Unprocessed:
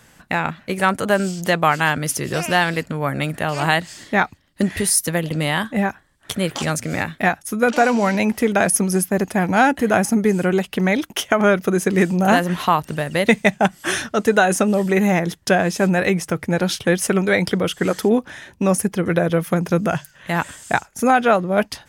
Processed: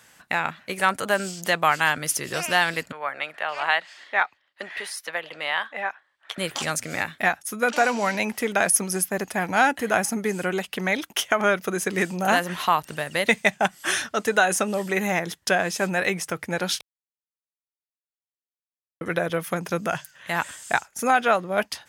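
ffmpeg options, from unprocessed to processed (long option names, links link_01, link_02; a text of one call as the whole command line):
ffmpeg -i in.wav -filter_complex "[0:a]asettb=1/sr,asplit=3[link_01][link_02][link_03];[link_01]atrim=end=2.924[link_04];[link_02]atrim=start=2.92:end=6.38,asetpts=PTS-STARTPTS,afade=type=in:duration=0.004:curve=qsin,afade=type=out:start_time=3.456:duration=0.004:curve=qsin,acrossover=split=470 3900:gain=0.0794 1 0.1[link_05][link_06][link_07];[link_05][link_06][link_07]amix=inputs=3:normalize=0[link_08];[link_03]atrim=start=6.376[link_09];[link_04][link_08]acrossfade=duration=0.004:curve1=hsin:curve2=qsin[link_10];[link_10][link_09]acrossfade=duration=0.004:curve1=qsin:curve2=hsin,asplit=3[link_11][link_12][link_13];[link_11]atrim=end=16.81,asetpts=PTS-STARTPTS,afade=type=out:start_time=16.806:duration=0.004:curve=hsin[link_14];[link_12]atrim=start=16.81:end=19.01,asetpts=PTS-STARTPTS,volume=0[link_15];[link_13]atrim=start=19.01,asetpts=PTS-STARTPTS,afade=type=in:duration=0.004:curve=hsin[link_16];[link_14][link_15][link_16]concat=n=3:v=0:a=1,highpass=52,lowshelf=frequency=480:gain=-12,volume=-1dB" out.wav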